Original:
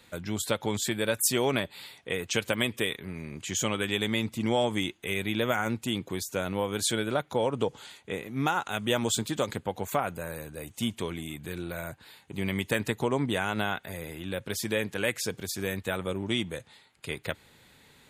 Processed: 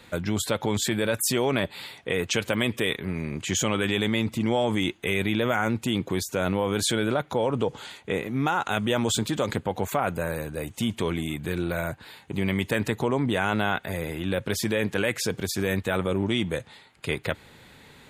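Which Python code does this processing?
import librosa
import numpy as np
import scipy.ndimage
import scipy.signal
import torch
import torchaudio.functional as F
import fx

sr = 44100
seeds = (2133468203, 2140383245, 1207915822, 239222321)

p1 = fx.high_shelf(x, sr, hz=4000.0, db=-7.0)
p2 = fx.over_compress(p1, sr, threshold_db=-33.0, ratio=-1.0)
y = p1 + (p2 * librosa.db_to_amplitude(1.0))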